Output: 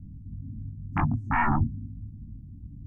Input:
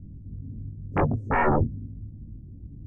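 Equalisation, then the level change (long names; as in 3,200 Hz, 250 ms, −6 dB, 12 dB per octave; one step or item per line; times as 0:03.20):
Chebyshev band-stop filter 260–890 Hz, order 2
0.0 dB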